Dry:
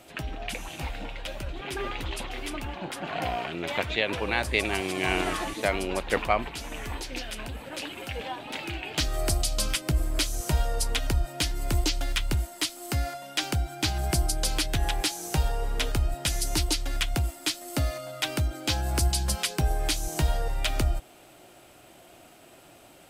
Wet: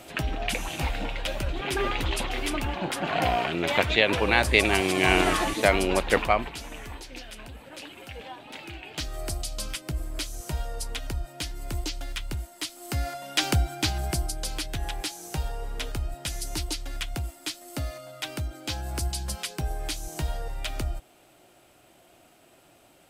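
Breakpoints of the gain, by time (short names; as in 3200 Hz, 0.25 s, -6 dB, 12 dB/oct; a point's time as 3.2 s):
5.99 s +5.5 dB
7.01 s -6 dB
12.54 s -6 dB
13.5 s +5 dB
14.35 s -5 dB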